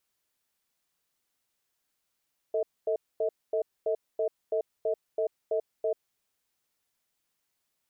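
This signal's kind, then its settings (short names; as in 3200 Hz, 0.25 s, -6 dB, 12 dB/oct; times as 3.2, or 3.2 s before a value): cadence 446 Hz, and 637 Hz, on 0.09 s, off 0.24 s, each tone -27.5 dBFS 3.60 s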